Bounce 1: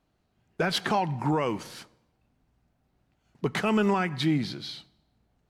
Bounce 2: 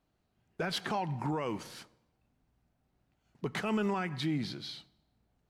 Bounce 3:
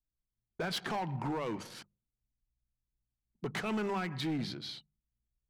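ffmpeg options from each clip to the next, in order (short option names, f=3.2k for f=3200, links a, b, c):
-af "alimiter=limit=-19.5dB:level=0:latency=1:release=86,volume=-4.5dB"
-af "anlmdn=0.00631,bandreject=f=50:t=h:w=6,bandreject=f=100:t=h:w=6,bandreject=f=150:t=h:w=6,bandreject=f=200:t=h:w=6,volume=30dB,asoftclip=hard,volume=-30dB"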